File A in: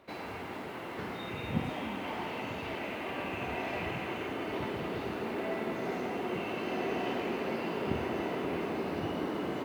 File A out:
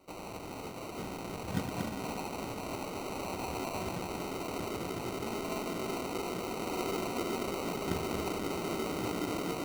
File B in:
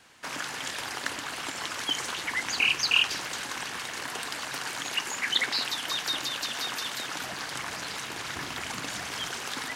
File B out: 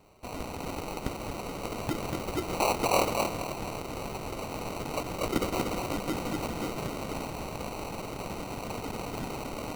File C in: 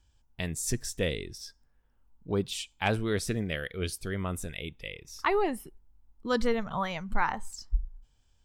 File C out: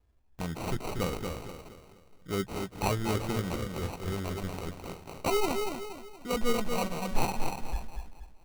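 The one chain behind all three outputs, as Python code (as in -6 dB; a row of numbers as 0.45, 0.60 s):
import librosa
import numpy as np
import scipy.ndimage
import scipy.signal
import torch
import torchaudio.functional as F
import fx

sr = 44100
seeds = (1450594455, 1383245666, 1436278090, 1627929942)

y = fx.chorus_voices(x, sr, voices=6, hz=0.46, base_ms=14, depth_ms=4.0, mix_pct=30)
y = fx.echo_feedback(y, sr, ms=236, feedback_pct=40, wet_db=-5.0)
y = fx.sample_hold(y, sr, seeds[0], rate_hz=1700.0, jitter_pct=0)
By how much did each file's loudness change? -1.0, -3.5, -1.5 LU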